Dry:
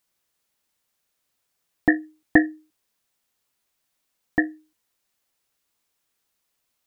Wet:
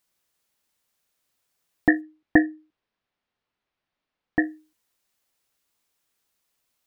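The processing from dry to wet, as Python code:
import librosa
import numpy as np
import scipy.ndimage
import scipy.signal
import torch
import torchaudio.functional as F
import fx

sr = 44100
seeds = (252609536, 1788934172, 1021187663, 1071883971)

y = fx.air_absorb(x, sr, metres=270.0, at=(2.0, 4.39), fade=0.02)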